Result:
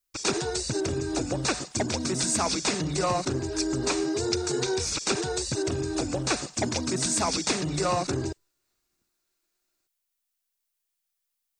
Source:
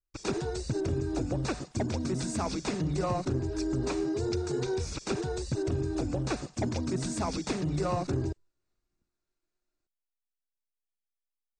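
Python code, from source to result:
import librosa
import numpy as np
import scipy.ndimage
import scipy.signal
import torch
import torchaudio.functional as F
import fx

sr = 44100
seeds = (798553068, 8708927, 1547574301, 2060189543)

y = fx.tilt_eq(x, sr, slope=2.5)
y = y * librosa.db_to_amplitude(6.5)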